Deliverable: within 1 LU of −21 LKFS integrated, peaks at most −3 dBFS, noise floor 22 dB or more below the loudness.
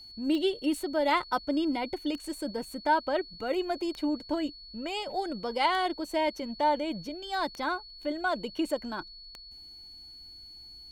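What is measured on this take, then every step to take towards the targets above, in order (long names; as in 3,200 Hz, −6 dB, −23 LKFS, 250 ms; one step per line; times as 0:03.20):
number of clicks 6; interfering tone 4,400 Hz; level of the tone −46 dBFS; integrated loudness −31.0 LKFS; sample peak −14.0 dBFS; target loudness −21.0 LKFS
→ click removal
notch filter 4,400 Hz, Q 30
level +10 dB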